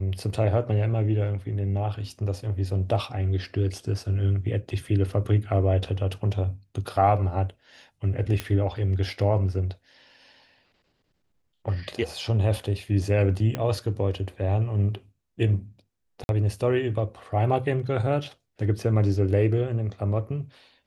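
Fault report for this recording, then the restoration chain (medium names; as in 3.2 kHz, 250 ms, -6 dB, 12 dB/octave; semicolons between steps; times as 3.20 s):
8.40 s: pop -13 dBFS
13.55 s: pop -14 dBFS
16.24–16.29 s: dropout 51 ms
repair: de-click; interpolate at 16.24 s, 51 ms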